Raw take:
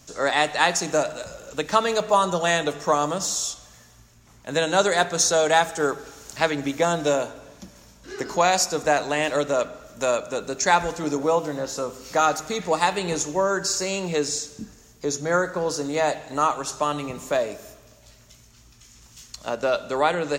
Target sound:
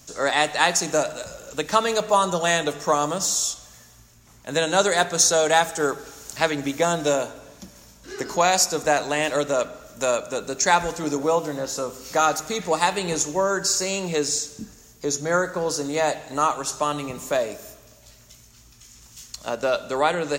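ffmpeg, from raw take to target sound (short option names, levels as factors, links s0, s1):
-af "highshelf=f=7400:g=7.5"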